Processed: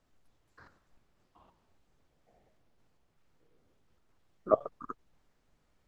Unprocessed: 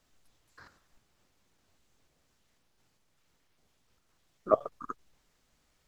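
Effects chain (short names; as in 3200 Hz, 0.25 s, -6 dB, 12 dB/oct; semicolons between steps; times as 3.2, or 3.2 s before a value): high shelf 2200 Hz -11 dB; echoes that change speed 0.487 s, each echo -7 st, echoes 3, each echo -6 dB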